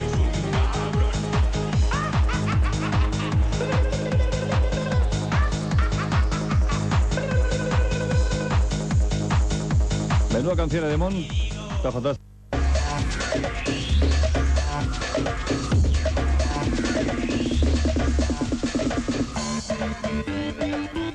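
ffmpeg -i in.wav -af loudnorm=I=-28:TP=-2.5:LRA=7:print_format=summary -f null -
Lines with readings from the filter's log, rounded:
Input Integrated:    -24.3 LUFS
Input True Peak:      -9.8 dBTP
Input LRA:             3.4 LU
Input Threshold:     -34.3 LUFS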